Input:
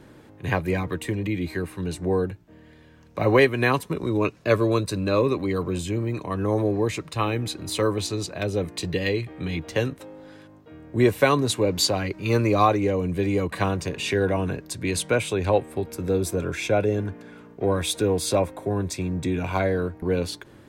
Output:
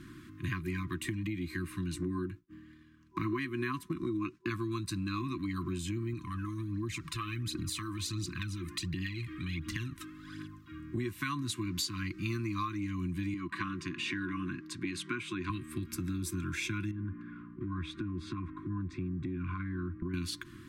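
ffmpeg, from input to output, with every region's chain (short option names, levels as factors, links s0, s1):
-filter_complex "[0:a]asettb=1/sr,asplit=3[s0][s1][s2];[s0]atrim=end=1.964[s3];[s1]atrim=start=1.96:end=4.5,asetpts=PTS-STARTPTS,afade=t=in:d=0.004:c=qsin,afade=t=out:st=2.536:d=0.004:c=qsin,agate=range=0.0224:threshold=0.00631:ratio=3:release=100:detection=peak,equalizer=f=490:t=o:w=2.1:g=10[s4];[s2]atrim=start=4.496[s5];[s3][s4]acrossfade=d=0.004:c1=hsin:c2=qsin[s6];[s6][s5]acrossfade=d=0.004:c1=qsin:c2=hsin,asettb=1/sr,asplit=3[s7][s8][s9];[s7]atrim=end=6.134[s10];[s8]atrim=start=6.13:end=10.8,asetpts=PTS-STARTPTS,afade=t=in:d=0.004:c=qsin,afade=t=out:st=4.666:d=0.004:c=qsin,acompressor=threshold=0.02:ratio=2.5:attack=3.2:release=140:knee=1:detection=peak,aphaser=in_gain=1:out_gain=1:delay=2.6:decay=0.56:speed=1.4:type=triangular[s11];[s9]atrim=start=10.796[s12];[s10][s11]acrossfade=d=0.004:c1=hsin:c2=qsin[s13];[s13][s12]acrossfade=d=0.004:c1=qsin:c2=hsin,asettb=1/sr,asplit=3[s14][s15][s16];[s14]atrim=end=13.344[s17];[s15]atrim=start=13.34:end=15.5,asetpts=PTS-STARTPTS,afade=t=in:d=0.004:c=qsin,afade=t=out:st=2.156:d=0.004:c=qsin,highpass=410,aemphasis=mode=reproduction:type=riaa[s18];[s16]atrim=start=15.496[s19];[s17][s18]acrossfade=d=0.004:c1=hsin:c2=qsin[s20];[s20][s19]acrossfade=d=0.004:c1=qsin:c2=hsin,asettb=1/sr,asplit=3[s21][s22][s23];[s21]atrim=end=16.914[s24];[s22]atrim=start=16.91:end=20.14,asetpts=PTS-STARTPTS,afade=t=in:d=0.004:c=qsin,afade=t=out:st=3.226:d=0.004:c=qsin,lowpass=1400,acompressor=threshold=0.0355:ratio=3:attack=3.2:release=140:knee=1:detection=peak[s25];[s23]atrim=start=20.136[s26];[s24][s25]acrossfade=d=0.004:c1=hsin:c2=qsin[s27];[s27][s26]acrossfade=d=0.004:c1=qsin:c2=hsin,afftfilt=real='re*(1-between(b*sr/4096,370,1000))':imag='im*(1-between(b*sr/4096,370,1000))':win_size=4096:overlap=0.75,acompressor=threshold=0.0224:ratio=6"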